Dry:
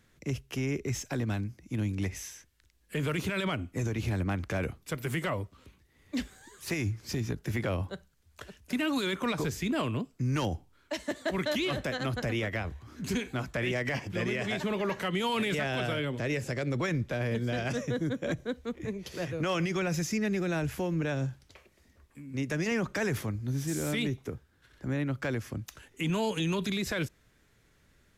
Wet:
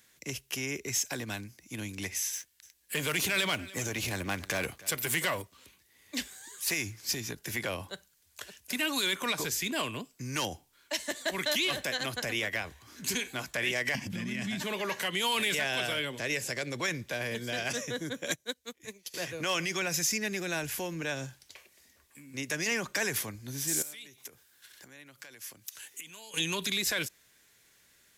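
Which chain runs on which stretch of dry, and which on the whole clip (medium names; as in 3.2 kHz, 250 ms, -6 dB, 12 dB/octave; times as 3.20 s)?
2.33–5.42 s: waveshaping leveller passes 1 + delay 295 ms -19 dB
13.95–14.63 s: resonant low shelf 320 Hz +10.5 dB, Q 3 + compression 12:1, threshold -24 dBFS
18.25–19.14 s: treble shelf 3.4 kHz +10.5 dB + upward expansion 2.5:1, over -43 dBFS
23.82–26.34 s: tilt EQ +2 dB/octave + compression 16:1, threshold -46 dBFS
whole clip: tilt EQ +3.5 dB/octave; band-stop 1.3 kHz, Q 11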